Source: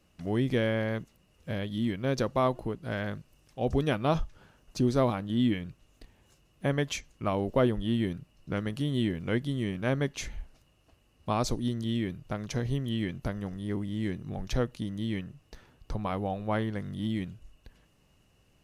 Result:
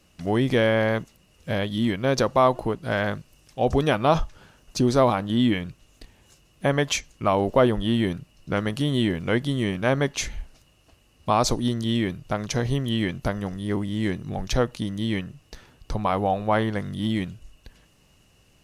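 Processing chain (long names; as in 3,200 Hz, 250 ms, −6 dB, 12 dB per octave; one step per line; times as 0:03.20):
dynamic equaliser 860 Hz, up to +7 dB, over −43 dBFS, Q 0.76
in parallel at −1.5 dB: brickwall limiter −20 dBFS, peak gain reduction 11 dB
on the sum: parametric band 6,500 Hz +5 dB 2.7 octaves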